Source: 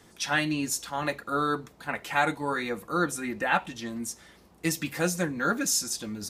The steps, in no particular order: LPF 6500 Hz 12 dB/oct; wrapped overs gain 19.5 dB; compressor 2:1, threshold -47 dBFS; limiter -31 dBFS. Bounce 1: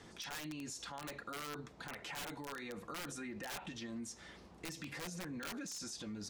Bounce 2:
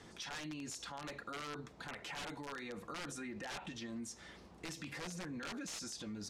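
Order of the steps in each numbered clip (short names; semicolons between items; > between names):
LPF > wrapped overs > limiter > compressor; wrapped overs > LPF > limiter > compressor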